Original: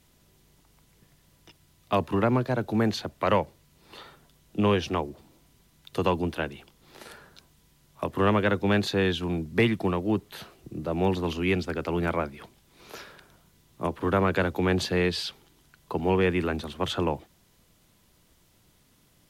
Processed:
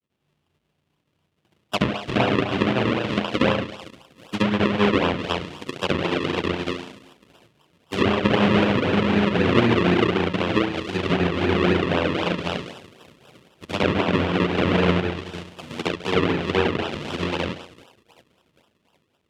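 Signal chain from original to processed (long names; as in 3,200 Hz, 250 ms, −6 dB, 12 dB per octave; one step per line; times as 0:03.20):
granular cloud 100 ms, grains 20 per second, spray 404 ms
on a send: feedback echo with a high-pass in the loop 383 ms, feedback 78%, high-pass 620 Hz, level −15.5 dB
on the sum: convolution reverb RT60 0.85 s, pre-delay 71 ms, DRR −7.5 dB
in parallel at 0 dB: brickwall limiter −13.5 dBFS, peak gain reduction 8.5 dB
on the sum: sample-and-hold swept by an LFO 40×, swing 100% 3.9 Hz
treble cut that deepens with the level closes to 2,500 Hz, closed at −11.5 dBFS
high-pass filter 97 Hz 12 dB per octave
parametric band 3,000 Hz +9 dB 0.91 octaves
expander for the loud parts 1.5 to 1, over −46 dBFS
level −3.5 dB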